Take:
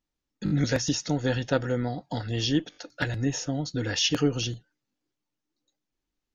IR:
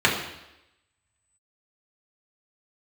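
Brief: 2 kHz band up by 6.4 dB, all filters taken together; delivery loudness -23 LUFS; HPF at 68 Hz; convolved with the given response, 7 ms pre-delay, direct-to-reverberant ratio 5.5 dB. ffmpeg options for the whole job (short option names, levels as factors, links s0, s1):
-filter_complex "[0:a]highpass=68,equalizer=f=2000:t=o:g=8.5,asplit=2[s0][s1];[1:a]atrim=start_sample=2205,adelay=7[s2];[s1][s2]afir=irnorm=-1:irlink=0,volume=0.0596[s3];[s0][s3]amix=inputs=2:normalize=0,volume=1.33"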